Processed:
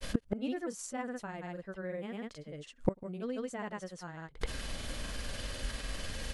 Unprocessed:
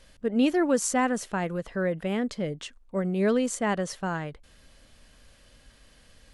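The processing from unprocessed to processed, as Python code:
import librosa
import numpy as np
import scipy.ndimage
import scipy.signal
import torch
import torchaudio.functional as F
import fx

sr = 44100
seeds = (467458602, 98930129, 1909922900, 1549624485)

y = fx.granulator(x, sr, seeds[0], grain_ms=100.0, per_s=20.0, spray_ms=100.0, spread_st=0)
y = fx.gate_flip(y, sr, shuts_db=-32.0, range_db=-30)
y = y * 10.0 ** (17.5 / 20.0)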